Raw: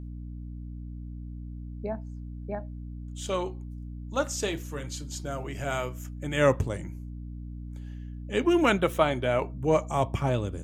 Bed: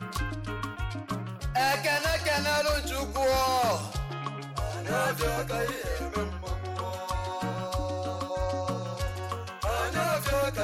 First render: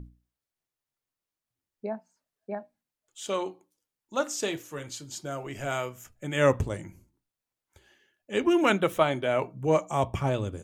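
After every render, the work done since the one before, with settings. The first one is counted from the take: notches 60/120/180/240/300 Hz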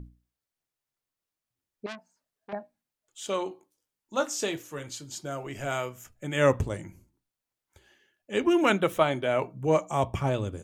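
1.86–2.53 core saturation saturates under 2800 Hz; 3.49–4.44 doubler 19 ms -7 dB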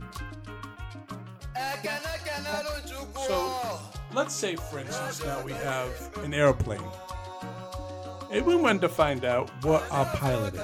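add bed -6.5 dB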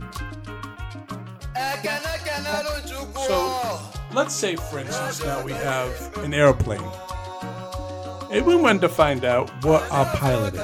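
gain +6 dB

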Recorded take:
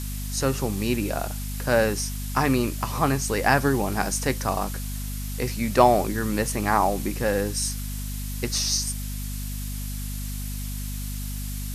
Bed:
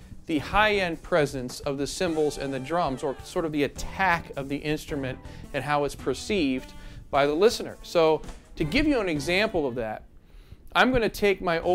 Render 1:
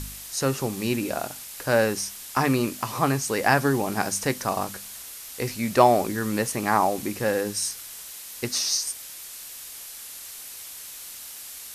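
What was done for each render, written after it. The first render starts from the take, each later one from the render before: de-hum 50 Hz, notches 5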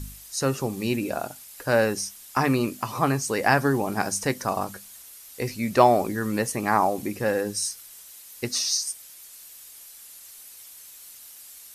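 denoiser 9 dB, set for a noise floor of -40 dBFS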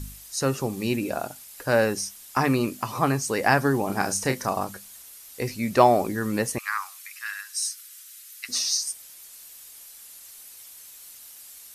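3.86–4.49 doubler 31 ms -7 dB; 6.58–8.49 steep high-pass 1200 Hz 48 dB/oct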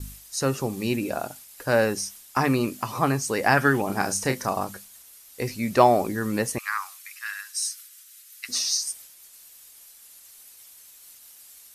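3.57–3.81 spectral gain 1200–3600 Hz +9 dB; expander -41 dBFS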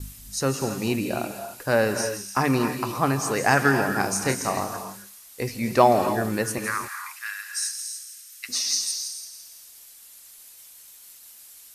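thin delay 0.166 s, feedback 50%, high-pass 3200 Hz, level -9 dB; non-linear reverb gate 0.31 s rising, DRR 7 dB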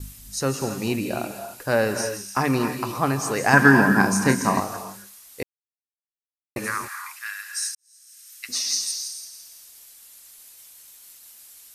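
3.53–4.6 small resonant body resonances 210/1000/1600 Hz, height 12 dB, ringing for 25 ms; 5.43–6.56 mute; 7.75–8.29 fade in quadratic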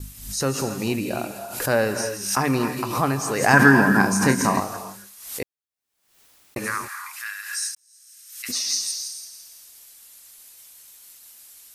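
backwards sustainer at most 78 dB/s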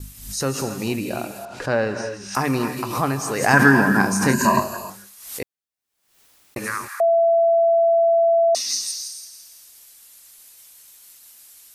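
1.45–2.35 air absorption 130 m; 4.33–4.9 ripple EQ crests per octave 1.4, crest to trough 15 dB; 7–8.55 bleep 670 Hz -13 dBFS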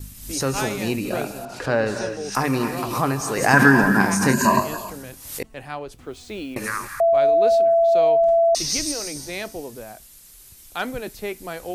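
add bed -7.5 dB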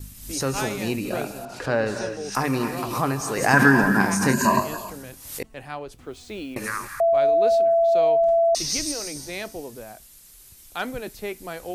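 gain -2 dB

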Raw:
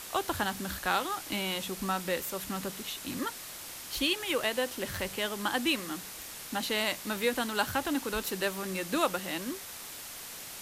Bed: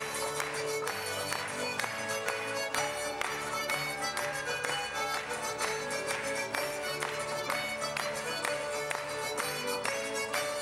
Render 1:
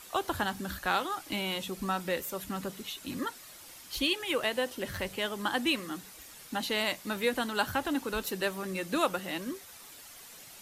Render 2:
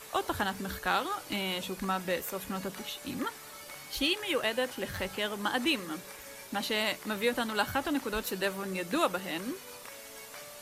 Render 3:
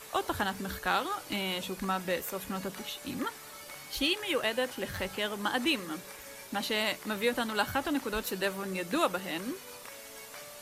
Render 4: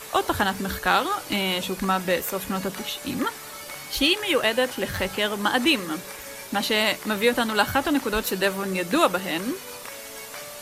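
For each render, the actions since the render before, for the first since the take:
denoiser 9 dB, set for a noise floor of -44 dBFS
add bed -15.5 dB
nothing audible
gain +8.5 dB

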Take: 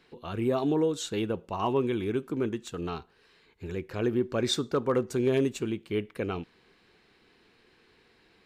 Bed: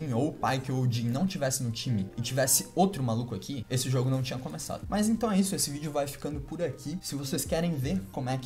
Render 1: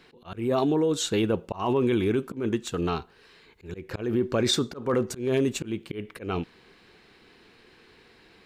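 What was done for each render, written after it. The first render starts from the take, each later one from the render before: in parallel at -1 dB: negative-ratio compressor -29 dBFS, ratio -0.5; on the sum: auto swell 0.19 s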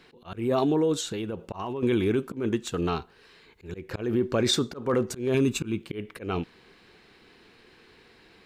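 1–1.83 compressor, threshold -29 dBFS; 5.34–5.82 comb 0.8 ms, depth 58%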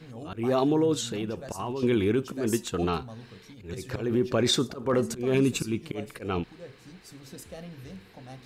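add bed -13.5 dB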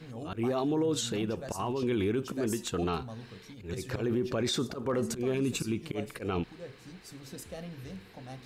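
limiter -22 dBFS, peak gain reduction 9 dB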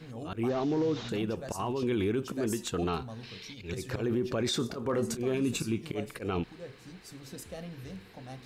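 0.49–1.09 delta modulation 32 kbps, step -44 dBFS; 3.23–3.72 band shelf 3600 Hz +10 dB; 4.57–5.99 doubler 26 ms -11 dB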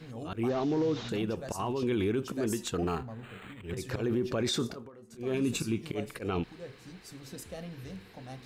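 2.75–3.77 decimation joined by straight lines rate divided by 8×; 4.66–5.35 dip -23 dB, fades 0.24 s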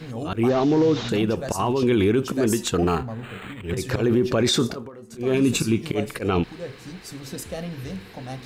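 gain +10 dB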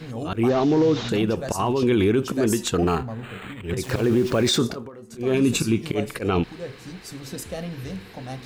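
3.83–4.57 sample gate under -33.5 dBFS

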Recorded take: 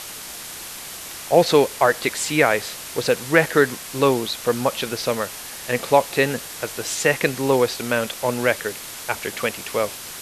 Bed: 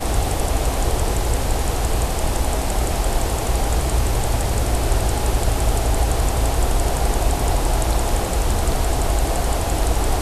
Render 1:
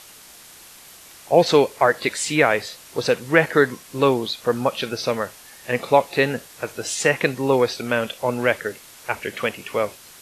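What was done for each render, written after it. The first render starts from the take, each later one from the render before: noise print and reduce 10 dB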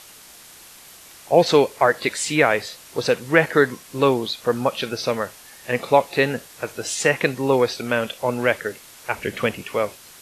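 9.18–9.63 low shelf 280 Hz +9 dB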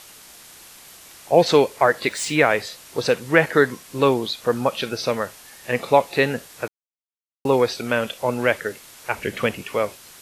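2.08–2.49 median filter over 3 samples; 6.68–7.45 mute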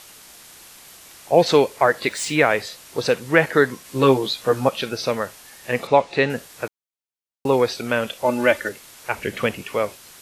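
3.83–4.69 doubler 15 ms -2.5 dB; 5.87–6.3 Bessel low-pass 5500 Hz, order 4; 8.24–8.69 comb 3.4 ms, depth 78%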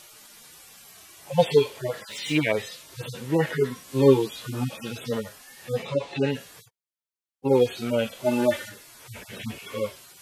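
median-filter separation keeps harmonic; dynamic EQ 3200 Hz, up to +7 dB, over -51 dBFS, Q 1.8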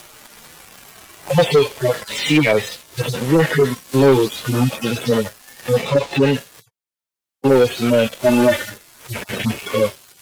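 sample leveller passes 3; three-band squash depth 40%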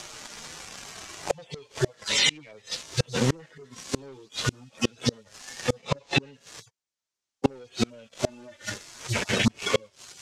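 flipped gate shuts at -10 dBFS, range -33 dB; synth low-pass 6500 Hz, resonance Q 1.9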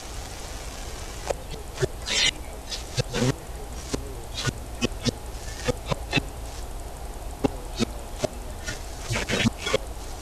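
add bed -17 dB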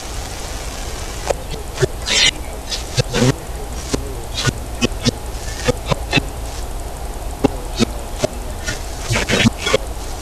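gain +9.5 dB; limiter -1 dBFS, peak gain reduction 2.5 dB

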